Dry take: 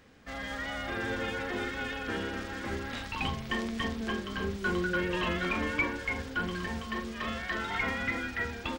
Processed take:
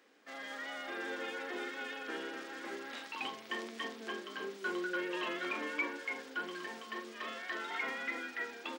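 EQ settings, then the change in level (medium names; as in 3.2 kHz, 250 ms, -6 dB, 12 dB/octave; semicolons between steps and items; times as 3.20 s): Chebyshev high-pass 310 Hz, order 3; -5.5 dB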